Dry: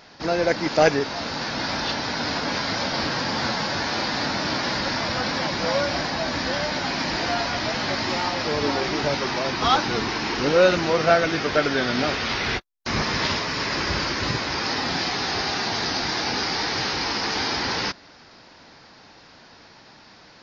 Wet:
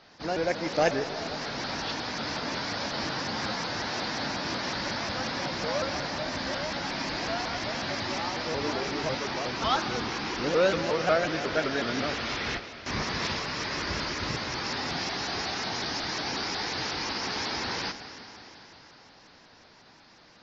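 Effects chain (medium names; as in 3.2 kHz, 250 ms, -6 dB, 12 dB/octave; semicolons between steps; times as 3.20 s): algorithmic reverb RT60 4 s, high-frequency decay 1×, pre-delay 30 ms, DRR 9.5 dB; vibrato with a chosen wave saw up 5.5 Hz, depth 160 cents; trim -7 dB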